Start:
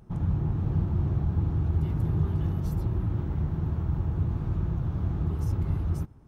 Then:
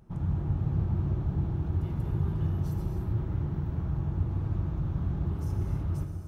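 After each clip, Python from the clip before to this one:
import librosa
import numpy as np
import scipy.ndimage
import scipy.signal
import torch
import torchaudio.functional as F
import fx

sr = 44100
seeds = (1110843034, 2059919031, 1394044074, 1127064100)

y = fx.rev_gated(x, sr, seeds[0], gate_ms=330, shape='flat', drr_db=3.0)
y = y * librosa.db_to_amplitude(-4.0)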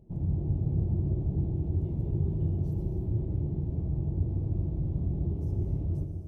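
y = fx.curve_eq(x, sr, hz=(200.0, 380.0, 670.0, 1400.0, 2400.0), db=(0, 3, -2, -26, -14))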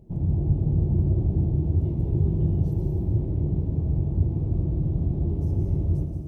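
y = x + 10.0 ** (-7.5 / 20.0) * np.pad(x, (int(179 * sr / 1000.0), 0))[:len(x)]
y = y * librosa.db_to_amplitude(5.5)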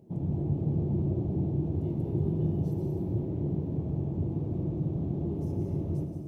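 y = scipy.signal.sosfilt(scipy.signal.butter(2, 160.0, 'highpass', fs=sr, output='sos'), x)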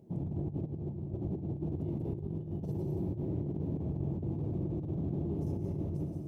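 y = fx.over_compress(x, sr, threshold_db=-31.0, ratio=-0.5)
y = y * librosa.db_to_amplitude(-3.5)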